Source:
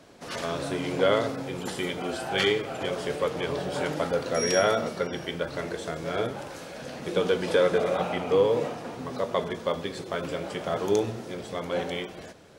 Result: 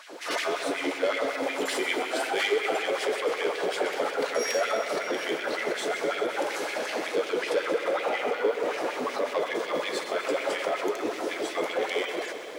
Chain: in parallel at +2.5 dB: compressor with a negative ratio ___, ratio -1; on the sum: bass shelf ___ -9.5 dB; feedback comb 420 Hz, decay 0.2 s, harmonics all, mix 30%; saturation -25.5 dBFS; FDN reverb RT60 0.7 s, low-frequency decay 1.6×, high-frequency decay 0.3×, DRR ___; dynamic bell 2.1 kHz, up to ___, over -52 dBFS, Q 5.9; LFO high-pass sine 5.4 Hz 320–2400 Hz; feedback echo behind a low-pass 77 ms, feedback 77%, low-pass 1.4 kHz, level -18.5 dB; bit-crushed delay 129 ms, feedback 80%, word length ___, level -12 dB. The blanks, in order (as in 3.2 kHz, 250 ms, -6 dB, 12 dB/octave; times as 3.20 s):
-35 dBFS, 120 Hz, 15.5 dB, +5 dB, 9-bit